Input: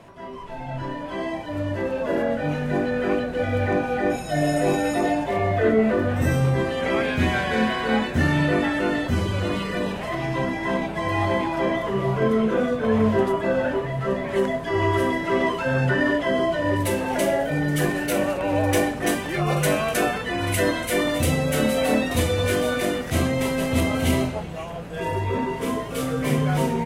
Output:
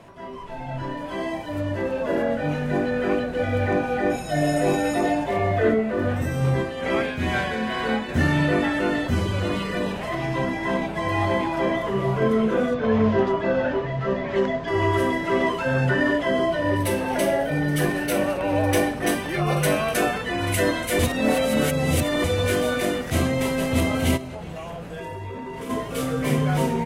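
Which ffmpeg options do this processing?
-filter_complex "[0:a]asettb=1/sr,asplit=3[s0][s1][s2];[s0]atrim=end=0.974[s3];[s1]atrim=start=0.97:end=1.61,asetpts=PTS-STARTPTS,afade=t=in:d=0.004:c=qsin,afade=t=out:st=0.636:d=0.004:c=qsin,highshelf=f=8600:g=8[s4];[s2]atrim=start=1.606[s5];[s3][s4]acrossfade=d=0.004:c1=hsin:c2=qsin[s6];[s6][s5]acrossfade=d=0.004:c1=qsin:c2=hsin,asplit=3[s7][s8][s9];[s7]afade=t=out:st=5.73:d=0.02[s10];[s8]tremolo=f=2.3:d=0.49,afade=t=in:st=5.73:d=0.02,afade=t=out:st=8.08:d=0.02[s11];[s9]afade=t=in:st=8.08:d=0.02[s12];[s10][s11][s12]amix=inputs=3:normalize=0,asettb=1/sr,asplit=3[s13][s14][s15];[s13]atrim=end=12.744[s16];[s14]atrim=start=12.74:end=14.68,asetpts=PTS-STARTPTS,afade=t=in:d=0.004:c=qsin,afade=t=out:st=1.936:d=0.004:c=qsin,lowpass=f=6000:w=0.5412,lowpass=f=6000:w=1.3066[s17];[s15]atrim=start=14.676[s18];[s16][s17]acrossfade=d=0.004:c1=hsin:c2=qsin[s19];[s19][s18]acrossfade=d=0.004:c1=qsin:c2=hsin,asettb=1/sr,asplit=3[s20][s21][s22];[s20]atrim=end=16.504[s23];[s21]atrim=start=16.5:end=19.96,asetpts=PTS-STARTPTS,afade=t=in:d=0.004:c=qsin,afade=t=out:st=3.456:d=0.004:c=qsin,bandreject=f=7100:w=7[s24];[s22]atrim=start=19.956[s25];[s23][s24]acrossfade=d=0.004:c1=hsin:c2=qsin[s26];[s26][s25]acrossfade=d=0.004:c1=qsin:c2=hsin,asplit=3[s27][s28][s29];[s27]afade=t=out:st=24.16:d=0.02[s30];[s28]acompressor=threshold=0.0355:ratio=16:attack=3.2:release=140:knee=1:detection=peak,afade=t=in:st=24.16:d=0.02,afade=t=out:st=25.69:d=0.02[s31];[s29]afade=t=in:st=25.69:d=0.02[s32];[s30][s31][s32]amix=inputs=3:normalize=0,asplit=3[s33][s34][s35];[s33]atrim=end=20.992[s36];[s34]atrim=start=20.988:end=22.242,asetpts=PTS-STARTPTS,areverse[s37];[s35]atrim=start=22.238[s38];[s36][s37]acrossfade=d=0.004:c1=hsin:c2=hsin[s39];[s39][s38]acrossfade=d=0.004:c1=hsin:c2=hsin"

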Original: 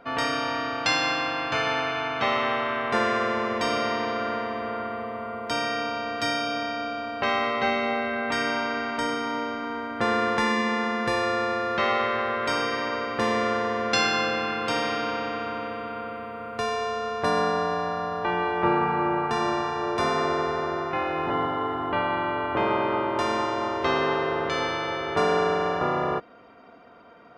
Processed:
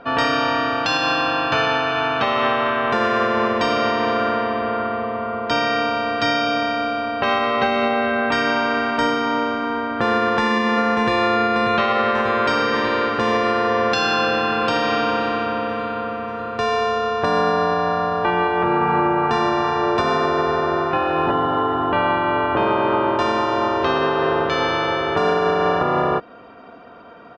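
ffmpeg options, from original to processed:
-filter_complex "[0:a]asettb=1/sr,asplit=3[s0][s1][s2];[s0]atrim=end=4.354[s3];[s1]atrim=start=4.35:end=6.47,asetpts=PTS-STARTPTS,afade=t=in:d=0.004:c=qsin,afade=t=out:st=2.116:d=0.004:c=qsin,lowpass=f=7200:w=0.5412,lowpass=f=7200:w=1.3066[s4];[s2]atrim=start=6.466[s5];[s3][s4]acrossfade=d=0.004:c1=hsin:c2=qsin[s6];[s6][s5]acrossfade=d=0.004:c1=qsin:c2=hsin,asplit=2[s7][s8];[s8]afade=t=in:st=10.18:d=0.01,afade=t=out:st=11.32:d=0.01,aecho=0:1:590|1180|1770|2360|2950|3540|4130|4720|5310|5900|6490|7080:0.446684|0.335013|0.25126|0.188445|0.141333|0.106|0.0795001|0.0596251|0.0447188|0.0335391|0.0251543|0.0188657[s9];[s7][s9]amix=inputs=2:normalize=0,lowpass=4700,bandreject=f=2100:w=8.3,alimiter=limit=0.133:level=0:latency=1:release=168,volume=2.66"

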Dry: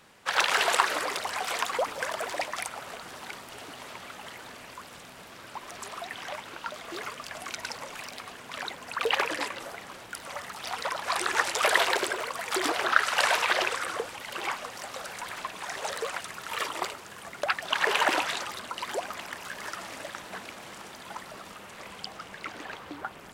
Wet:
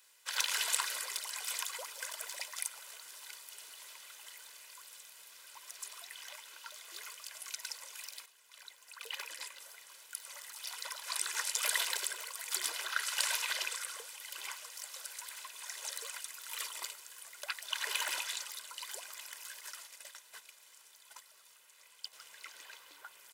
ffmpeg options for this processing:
-filter_complex "[0:a]asettb=1/sr,asplit=3[s0][s1][s2];[s0]atrim=end=19.604[s3];[s1]atrim=start=19.6:end=22.13,asetpts=PTS-STARTPTS,afade=t=in:d=0.004:c=qsin,afade=t=out:st=2.526:d=0.004:c=qsin,agate=range=0.398:threshold=0.00891:ratio=16:release=100:detection=peak[s4];[s2]atrim=start=22.126[s5];[s3][s4]acrossfade=d=0.004:c1=hsin:c2=qsin[s6];[s6][s5]acrossfade=d=0.004:c1=qsin:c2=hsin,asplit=2[s7][s8];[s7]atrim=end=8.26,asetpts=PTS-STARTPTS,afade=t=out:st=8.256:d=0.004:c=hsin:silence=0.237137[s9];[s8]atrim=start=8.26,asetpts=PTS-STARTPTS,afade=t=in:d=2.24:silence=0.237137[s10];[s9][s10]concat=n=2:v=0:a=1,aderivative,aecho=1:1:2:0.49,volume=0.891"

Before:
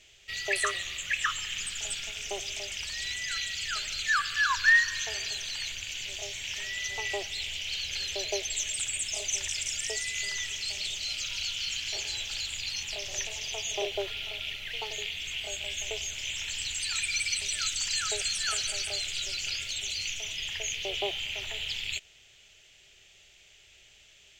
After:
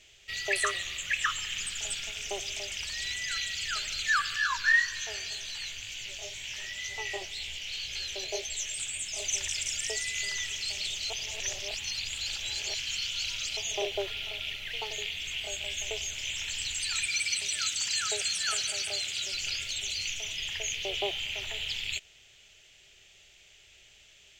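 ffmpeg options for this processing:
-filter_complex "[0:a]asplit=3[s0][s1][s2];[s0]afade=t=out:st=4.36:d=0.02[s3];[s1]flanger=delay=16:depth=5.7:speed=2,afade=t=in:st=4.36:d=0.02,afade=t=out:st=9.17:d=0.02[s4];[s2]afade=t=in:st=9.17:d=0.02[s5];[s3][s4][s5]amix=inputs=3:normalize=0,asettb=1/sr,asplit=3[s6][s7][s8];[s6]atrim=end=17.064[s9];[s7]atrim=start=17.06:end=19.34,asetpts=PTS-STARTPTS,afade=t=in:d=0.004:c=qsin,afade=t=out:st=2.276:d=0.004:c=qsin,highpass=110[s10];[s8]atrim=start=19.336[s11];[s9][s10]acrossfade=d=0.004:c1=hsin:c2=qsin[s12];[s12][s11]acrossfade=d=0.004:c1=qsin:c2=hsin,asplit=3[s13][s14][s15];[s13]atrim=end=11.102[s16];[s14]atrim=start=11.098:end=13.572,asetpts=PTS-STARTPTS,areverse[s17];[s15]atrim=start=13.568[s18];[s16][s17]acrossfade=d=0.004:c1=hsin:c2=hsin[s19];[s19][s18]acrossfade=d=0.004:c1=hsin:c2=hsin"

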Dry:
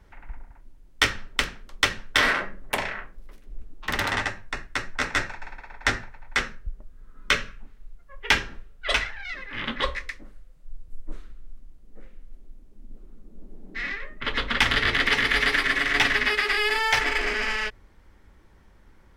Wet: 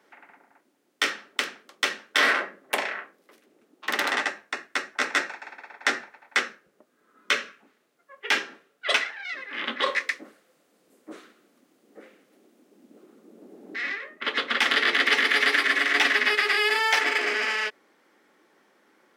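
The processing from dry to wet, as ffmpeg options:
-filter_complex "[0:a]asettb=1/sr,asplit=3[s0][s1][s2];[s0]atrim=end=9.864[s3];[s1]atrim=start=9.86:end=13.76,asetpts=PTS-STARTPTS,afade=t=in:d=0.004:c=qsin,afade=t=out:st=3.896:d=0.004:c=qsin,acontrast=67[s4];[s2]atrim=start=13.756[s5];[s3][s4]acrossfade=d=0.004:c1=hsin:c2=qsin[s6];[s6][s5]acrossfade=d=0.004:c1=qsin:c2=hsin,highpass=f=270:w=0.5412,highpass=f=270:w=1.3066,bandreject=f=950:w=14,alimiter=level_in=2.51:limit=0.891:release=50:level=0:latency=1,volume=0.447"

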